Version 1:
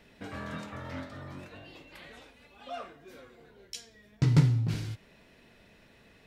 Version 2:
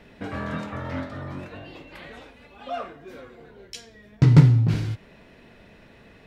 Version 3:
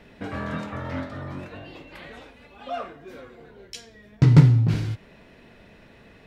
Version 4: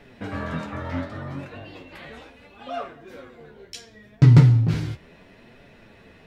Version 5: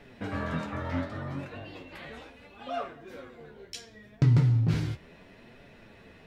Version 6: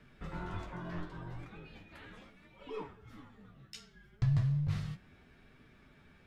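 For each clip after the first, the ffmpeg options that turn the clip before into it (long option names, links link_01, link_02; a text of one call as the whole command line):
ffmpeg -i in.wav -af "highshelf=frequency=3500:gain=-10,volume=9dB" out.wav
ffmpeg -i in.wav -af anull out.wav
ffmpeg -i in.wav -af "flanger=delay=6.9:depth=6.9:regen=39:speed=0.71:shape=triangular,volume=4.5dB" out.wav
ffmpeg -i in.wav -af "alimiter=limit=-11dB:level=0:latency=1:release=396,volume=-2.5dB" out.wav
ffmpeg -i in.wav -af "afreqshift=-260,volume=-8dB" out.wav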